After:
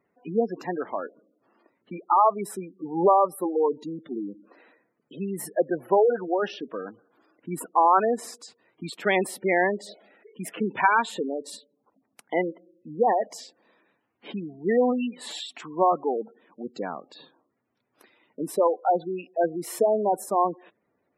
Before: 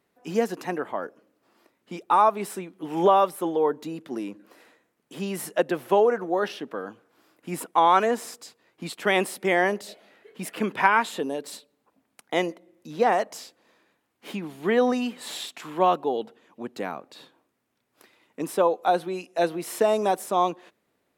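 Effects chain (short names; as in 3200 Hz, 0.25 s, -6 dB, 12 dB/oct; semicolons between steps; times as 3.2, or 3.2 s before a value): spectral gate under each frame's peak -15 dB strong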